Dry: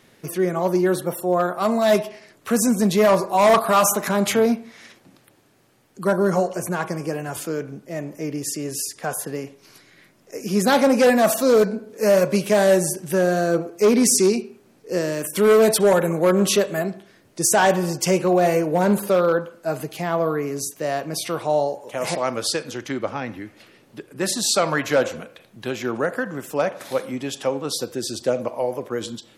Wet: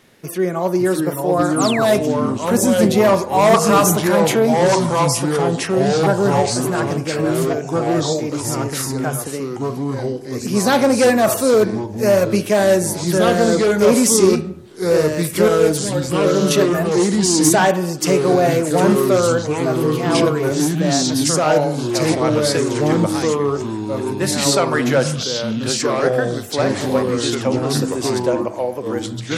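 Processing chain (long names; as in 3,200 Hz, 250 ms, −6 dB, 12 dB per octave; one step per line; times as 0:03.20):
0:15.48–0:16.51: stiff-string resonator 65 Hz, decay 0.37 s, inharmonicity 0.008
delay with pitch and tempo change per echo 517 ms, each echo −3 semitones, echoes 3
0:01.56–0:01.86: sound drawn into the spectrogram fall 900–11,000 Hz −27 dBFS
level +2 dB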